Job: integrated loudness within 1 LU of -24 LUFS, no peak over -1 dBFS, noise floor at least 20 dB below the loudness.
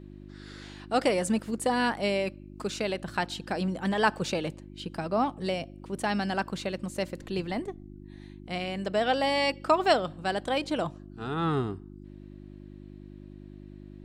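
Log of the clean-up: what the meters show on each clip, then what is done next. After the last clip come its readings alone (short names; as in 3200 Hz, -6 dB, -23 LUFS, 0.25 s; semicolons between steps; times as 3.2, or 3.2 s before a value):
hum 50 Hz; harmonics up to 350 Hz; hum level -44 dBFS; loudness -29.5 LUFS; peak -9.5 dBFS; loudness target -24.0 LUFS
-> de-hum 50 Hz, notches 7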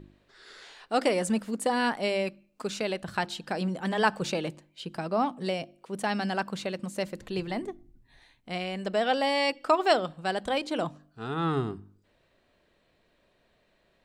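hum none; loudness -29.5 LUFS; peak -9.5 dBFS; loudness target -24.0 LUFS
-> gain +5.5 dB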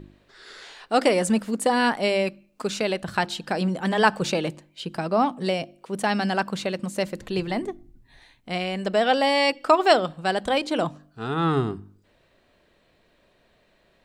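loudness -24.0 LUFS; peak -4.0 dBFS; noise floor -63 dBFS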